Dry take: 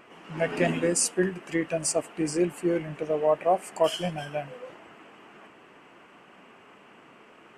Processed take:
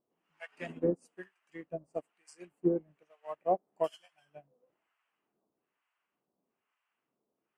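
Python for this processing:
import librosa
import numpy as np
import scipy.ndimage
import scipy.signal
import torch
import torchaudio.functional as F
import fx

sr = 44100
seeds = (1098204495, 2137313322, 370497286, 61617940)

y = fx.harmonic_tremolo(x, sr, hz=1.1, depth_pct=100, crossover_hz=820.0)
y = fx.upward_expand(y, sr, threshold_db=-41.0, expansion=2.5)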